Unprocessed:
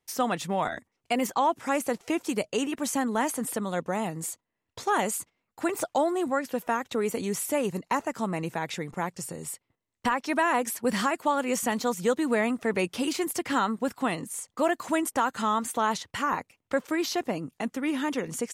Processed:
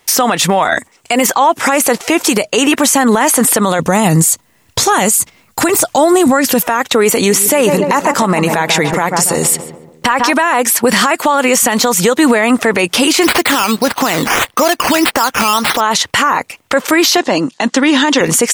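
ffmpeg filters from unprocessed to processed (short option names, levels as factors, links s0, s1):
-filter_complex "[0:a]asettb=1/sr,asplit=3[s0][s1][s2];[s0]atrim=end=0.754[s3];[s1]atrim=start=0.75:end=1.23,asetpts=PTS-STARTPTS,afade=t=in:d=0.004:c=qsin,afade=t=out:st=0.476:d=0.004:c=qsin,equalizer=f=7800:w=2.7:g=8.5[s4];[s2]atrim=start=1.226[s5];[s3][s4]acrossfade=d=0.004:c1=hsin:c2=qsin[s6];[s6][s5]acrossfade=d=0.004:c1=qsin:c2=hsin,asettb=1/sr,asplit=3[s7][s8][s9];[s7]atrim=end=3.794[s10];[s8]atrim=start=3.79:end=6.63,asetpts=PTS-STARTPTS,afade=t=in:d=0.004:c=qsin,afade=t=out:st=2.836:d=0.004:c=qsin,bass=f=250:g=12,treble=f=4000:g=7[s11];[s9]atrim=start=6.626[s12];[s10][s11]acrossfade=d=0.004:c1=hsin:c2=qsin[s13];[s13][s12]acrossfade=d=0.004:c1=qsin:c2=hsin,asettb=1/sr,asplit=3[s14][s15][s16];[s14]atrim=end=7.164[s17];[s15]atrim=start=7.16:end=10.33,asetpts=PTS-STARTPTS,afade=t=in:d=0.004:c=qsin,afade=t=out:st=3.166:d=0.004:c=qsin,asplit=2[s18][s19];[s19]adelay=142,lowpass=f=1200:p=1,volume=0.335,asplit=2[s20][s21];[s21]adelay=142,lowpass=f=1200:p=1,volume=0.5,asplit=2[s22][s23];[s23]adelay=142,lowpass=f=1200:p=1,volume=0.5,asplit=2[s24][s25];[s25]adelay=142,lowpass=f=1200:p=1,volume=0.5,asplit=2[s26][s27];[s27]adelay=142,lowpass=f=1200:p=1,volume=0.5,asplit=2[s28][s29];[s29]adelay=142,lowpass=f=1200:p=1,volume=0.5[s30];[s18][s20][s22][s24][s26][s28][s30]amix=inputs=7:normalize=0,atrim=end_sample=139797[s31];[s16]atrim=start=10.326[s32];[s17][s31]acrossfade=d=0.004:c1=hsin:c2=qsin[s33];[s33][s32]acrossfade=d=0.004:c1=qsin:c2=hsin,asplit=3[s34][s35][s36];[s34]afade=t=out:st=13.22:d=0.02[s37];[s35]acrusher=samples=9:mix=1:aa=0.000001:lfo=1:lforange=5.4:lforate=1.7,afade=t=in:st=13.22:d=0.02,afade=t=out:st=15.79:d=0.02[s38];[s36]afade=t=in:st=15.79:d=0.02[s39];[s37][s38][s39]amix=inputs=3:normalize=0,asettb=1/sr,asplit=3[s40][s41][s42];[s40]atrim=end=17.174[s43];[s41]atrim=start=17.17:end=18.21,asetpts=PTS-STARTPTS,afade=t=in:d=0.004:c=qsin,afade=t=out:st=1.036:d=0.004:c=qsin,highpass=230,equalizer=f=440:t=q:w=4:g=-6,equalizer=f=710:t=q:w=4:g=-5,equalizer=f=1300:t=q:w=4:g=-6,equalizer=f=2300:t=q:w=4:g=-7,equalizer=f=4100:t=q:w=4:g=4,lowpass=f=7400:w=0.5412,lowpass=f=7400:w=1.3066[s44];[s42]atrim=start=18.206[s45];[s43][s44]acrossfade=d=0.004:c1=hsin:c2=qsin[s46];[s46][s45]acrossfade=d=0.004:c1=qsin:c2=hsin,lowshelf=f=380:g=-10.5,acompressor=threshold=0.0282:ratio=6,alimiter=level_in=37.6:limit=0.891:release=50:level=0:latency=1,volume=0.891"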